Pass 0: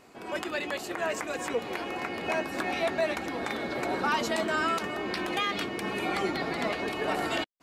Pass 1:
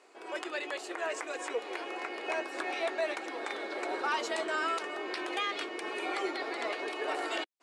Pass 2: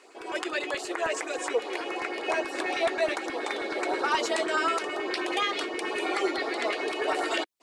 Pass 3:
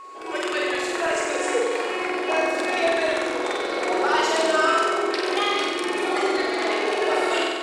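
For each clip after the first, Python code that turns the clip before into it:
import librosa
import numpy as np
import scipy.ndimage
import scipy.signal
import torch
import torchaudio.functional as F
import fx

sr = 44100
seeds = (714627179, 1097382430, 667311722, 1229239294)

y1 = scipy.signal.sosfilt(scipy.signal.ellip(3, 1.0, 40, [350.0, 9500.0], 'bandpass', fs=sr, output='sos'), x)
y1 = y1 * librosa.db_to_amplitude(-3.5)
y2 = fx.filter_lfo_notch(y1, sr, shape='saw_up', hz=9.4, low_hz=510.0, high_hz=3500.0, q=1.4)
y2 = y2 * librosa.db_to_amplitude(7.5)
y3 = fx.room_flutter(y2, sr, wall_m=8.0, rt60_s=1.5)
y3 = y3 + 10.0 ** (-40.0 / 20.0) * np.sin(2.0 * np.pi * 1100.0 * np.arange(len(y3)) / sr)
y3 = y3 * librosa.db_to_amplitude(1.5)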